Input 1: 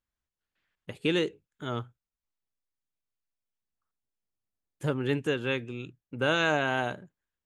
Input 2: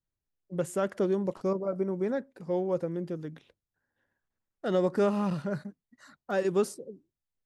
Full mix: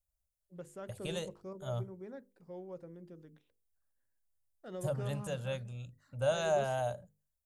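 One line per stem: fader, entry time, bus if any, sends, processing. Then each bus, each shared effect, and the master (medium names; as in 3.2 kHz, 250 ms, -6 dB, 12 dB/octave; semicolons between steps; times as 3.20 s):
-0.5 dB, 0.00 s, no send, FFT filter 110 Hz 0 dB, 390 Hz -26 dB, 580 Hz +3 dB, 1 kHz -11 dB, 2.2 kHz -17 dB, 9.3 kHz +6 dB
-17.0 dB, 0.00 s, no send, none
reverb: none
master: bass shelf 74 Hz +9 dB; hum notches 50/100/150/200/250/300/350/400/450/500 Hz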